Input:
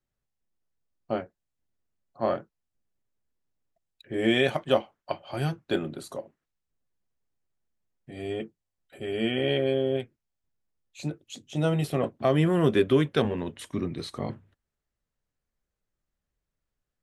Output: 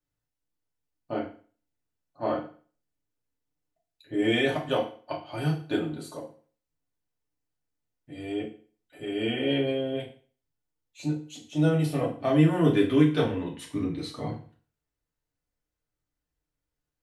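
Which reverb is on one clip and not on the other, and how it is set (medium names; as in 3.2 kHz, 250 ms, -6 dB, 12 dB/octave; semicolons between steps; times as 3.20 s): FDN reverb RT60 0.42 s, low-frequency decay 1×, high-frequency decay 0.95×, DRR -3.5 dB; trim -6 dB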